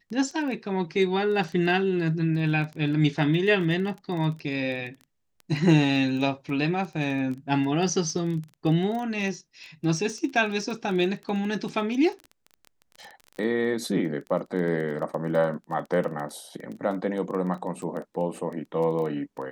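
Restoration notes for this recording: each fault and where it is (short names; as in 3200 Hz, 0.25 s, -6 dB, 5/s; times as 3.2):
crackle 15/s -32 dBFS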